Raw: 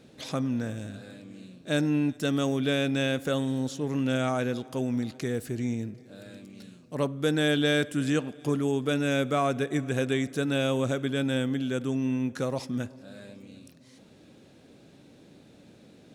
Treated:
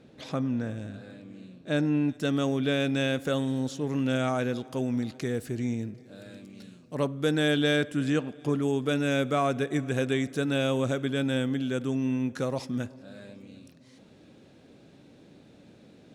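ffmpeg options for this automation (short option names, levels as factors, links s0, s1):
-af "asetnsamples=n=441:p=0,asendcmd='2.08 lowpass f 5100;2.8 lowpass f 9300;7.76 lowpass f 4200;8.62 lowpass f 10000;12.94 lowpass f 5400',lowpass=f=2700:p=1"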